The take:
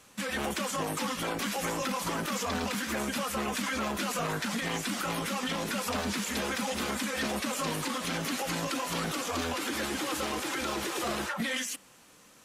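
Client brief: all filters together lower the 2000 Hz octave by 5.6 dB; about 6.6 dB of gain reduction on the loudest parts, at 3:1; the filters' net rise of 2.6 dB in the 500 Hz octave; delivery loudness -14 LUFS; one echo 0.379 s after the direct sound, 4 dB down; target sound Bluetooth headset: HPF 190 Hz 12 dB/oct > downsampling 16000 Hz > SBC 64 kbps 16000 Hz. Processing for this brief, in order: bell 500 Hz +3.5 dB; bell 2000 Hz -7.5 dB; compressor 3:1, threshold -37 dBFS; HPF 190 Hz 12 dB/oct; echo 0.379 s -4 dB; downsampling 16000 Hz; gain +23.5 dB; SBC 64 kbps 16000 Hz

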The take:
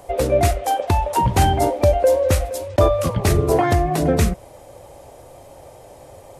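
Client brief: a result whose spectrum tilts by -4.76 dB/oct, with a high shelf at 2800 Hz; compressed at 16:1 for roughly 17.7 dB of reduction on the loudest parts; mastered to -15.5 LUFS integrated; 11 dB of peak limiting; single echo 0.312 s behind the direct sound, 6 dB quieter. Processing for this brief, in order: high shelf 2800 Hz +7.5 dB; compressor 16:1, threshold -28 dBFS; limiter -23.5 dBFS; echo 0.312 s -6 dB; gain +18.5 dB

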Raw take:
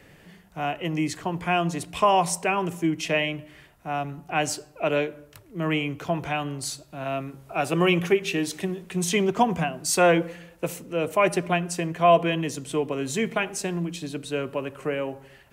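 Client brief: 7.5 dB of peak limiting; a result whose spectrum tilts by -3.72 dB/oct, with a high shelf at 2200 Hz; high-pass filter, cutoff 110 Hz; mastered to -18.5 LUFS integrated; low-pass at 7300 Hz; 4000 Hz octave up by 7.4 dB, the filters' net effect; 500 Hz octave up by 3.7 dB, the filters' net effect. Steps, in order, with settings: HPF 110 Hz; LPF 7300 Hz; bell 500 Hz +4.5 dB; high shelf 2200 Hz +3.5 dB; bell 4000 Hz +7.5 dB; gain +6 dB; limiter -5.5 dBFS

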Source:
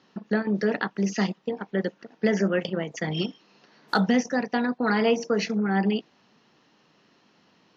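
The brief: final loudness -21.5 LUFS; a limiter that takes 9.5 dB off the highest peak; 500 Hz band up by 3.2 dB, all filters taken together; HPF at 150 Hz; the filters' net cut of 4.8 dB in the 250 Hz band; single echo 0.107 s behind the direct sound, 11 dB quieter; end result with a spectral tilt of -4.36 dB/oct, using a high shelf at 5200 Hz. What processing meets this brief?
HPF 150 Hz; bell 250 Hz -6 dB; bell 500 Hz +5.5 dB; high shelf 5200 Hz -8.5 dB; limiter -18.5 dBFS; echo 0.107 s -11 dB; gain +7.5 dB

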